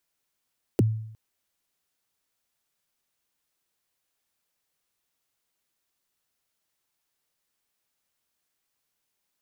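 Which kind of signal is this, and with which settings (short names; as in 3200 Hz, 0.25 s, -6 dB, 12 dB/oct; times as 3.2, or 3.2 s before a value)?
kick drum length 0.36 s, from 490 Hz, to 110 Hz, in 23 ms, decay 0.72 s, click on, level -14.5 dB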